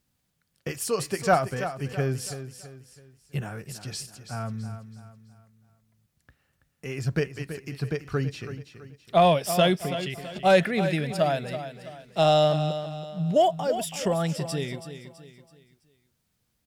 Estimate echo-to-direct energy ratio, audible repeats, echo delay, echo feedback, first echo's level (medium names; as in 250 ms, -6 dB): -10.5 dB, 3, 329 ms, 39%, -11.0 dB